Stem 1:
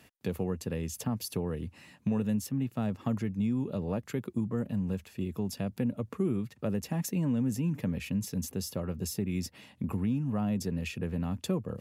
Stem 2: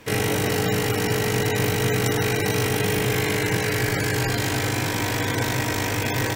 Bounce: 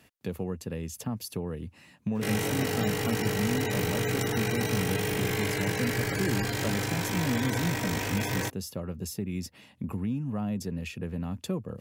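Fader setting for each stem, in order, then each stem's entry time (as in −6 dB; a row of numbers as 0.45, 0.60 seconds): −1.0, −7.0 decibels; 0.00, 2.15 seconds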